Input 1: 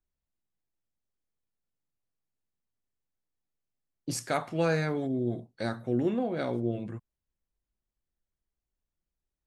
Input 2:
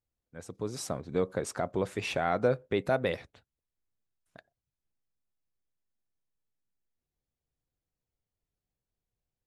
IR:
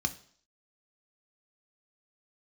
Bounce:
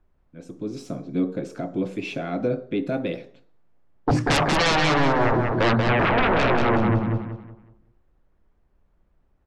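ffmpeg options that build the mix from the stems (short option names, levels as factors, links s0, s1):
-filter_complex "[0:a]lowpass=1300,bandreject=f=50:t=h:w=6,bandreject=f=100:t=h:w=6,bandreject=f=150:t=h:w=6,bandreject=f=200:t=h:w=6,bandreject=f=250:t=h:w=6,bandreject=f=300:t=h:w=6,bandreject=f=350:t=h:w=6,aeval=exprs='0.158*sin(PI/2*7.94*val(0)/0.158)':c=same,volume=1.19,asplit=2[s0][s1];[s1]volume=0.596[s2];[1:a]highpass=190,deesser=0.85,equalizer=f=320:t=o:w=1.8:g=12.5,volume=0.631,asplit=2[s3][s4];[s4]volume=0.668[s5];[2:a]atrim=start_sample=2205[s6];[s5][s6]afir=irnorm=-1:irlink=0[s7];[s2]aecho=0:1:186|372|558|744|930:1|0.32|0.102|0.0328|0.0105[s8];[s0][s3][s7][s8]amix=inputs=4:normalize=0,alimiter=limit=0.224:level=0:latency=1:release=224"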